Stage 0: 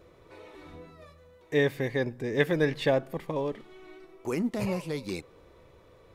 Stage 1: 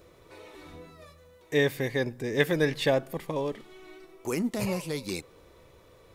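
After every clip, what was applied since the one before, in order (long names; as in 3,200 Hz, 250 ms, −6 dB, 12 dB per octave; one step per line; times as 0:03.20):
high-shelf EQ 4,400 Hz +10 dB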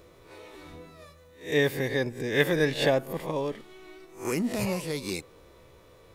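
peak hold with a rise ahead of every peak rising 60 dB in 0.35 s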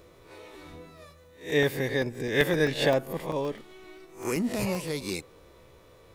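regular buffer underruns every 0.13 s, samples 64, zero, from 0:00.98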